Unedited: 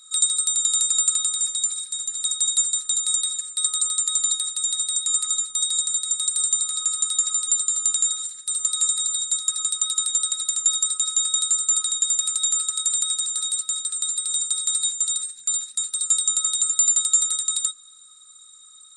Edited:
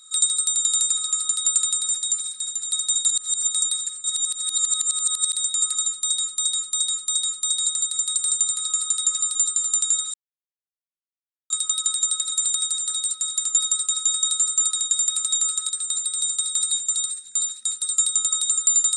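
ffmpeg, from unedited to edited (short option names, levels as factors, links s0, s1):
-filter_complex "[0:a]asplit=16[s0][s1][s2][s3][s4][s5][s6][s7][s8][s9][s10][s11][s12][s13][s14][s15];[s0]atrim=end=0.972[s16];[s1]atrim=start=6.698:end=7.182[s17];[s2]atrim=start=0.968:end=2.602[s18];[s3]atrim=start=2.598:end=2.992,asetpts=PTS-STARTPTS,areverse[s19];[s4]atrim=start=2.988:end=3.562[s20];[s5]atrim=start=3.558:end=4.852,asetpts=PTS-STARTPTS,areverse[s21];[s6]atrim=start=4.848:end=5.762[s22];[s7]atrim=start=5.408:end=5.762[s23];[s8]atrim=start=5.408:end=5.762[s24];[s9]atrim=start=5.408:end=5.762[s25];[s10]atrim=start=5.408:end=8.26,asetpts=PTS-STARTPTS,afade=t=out:st=2.848:d=0.004:c=hsin[s26];[s11]atrim=start=8.26:end=9.62,asetpts=PTS-STARTPTS,volume=0[s27];[s12]atrim=start=9.62:end=10.442,asetpts=PTS-STARTPTS,afade=t=in:d=0.004:c=hsin[s28];[s13]atrim=start=12.798:end=13.812[s29];[s14]atrim=start=10.438:end=12.802[s30];[s15]atrim=start=13.808[s31];[s16][s17]acrossfade=d=0.004:c1=hsin:c2=hsin[s32];[s32][s18]acrossfade=d=0.004:c1=hsin:c2=hsin[s33];[s33][s19]acrossfade=d=0.004:c1=hsin:c2=hsin[s34];[s34][s20]acrossfade=d=0.004:c1=hsin:c2=hsin[s35];[s35][s21]acrossfade=d=0.004:c1=hsin:c2=hsin[s36];[s36][s22]acrossfade=d=0.004:c1=hsin:c2=hsin[s37];[s37][s23]acrossfade=d=0.004:c1=hsin:c2=hsin[s38];[s38][s24]acrossfade=d=0.004:c1=hsin:c2=hsin[s39];[s39][s25]acrossfade=d=0.004:c1=hsin:c2=hsin[s40];[s26][s27][s28]concat=n=3:v=0:a=1[s41];[s40][s41]acrossfade=d=0.004:c1=hsin:c2=hsin[s42];[s42][s29]acrossfade=d=0.004:c1=hsin:c2=hsin[s43];[s43][s30]acrossfade=d=0.004:c1=hsin:c2=hsin[s44];[s44][s31]acrossfade=d=0.004:c1=hsin:c2=hsin"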